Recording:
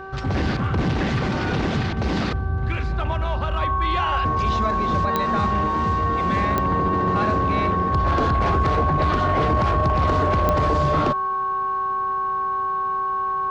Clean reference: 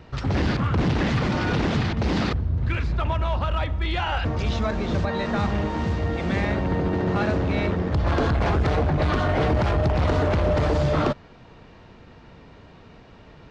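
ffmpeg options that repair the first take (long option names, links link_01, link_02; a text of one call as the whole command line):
ffmpeg -i in.wav -af "adeclick=threshold=4,bandreject=frequency=385.3:width_type=h:width=4,bandreject=frequency=770.6:width_type=h:width=4,bandreject=frequency=1155.9:width_type=h:width=4,bandreject=frequency=1541.2:width_type=h:width=4,bandreject=frequency=1100:width=30" out.wav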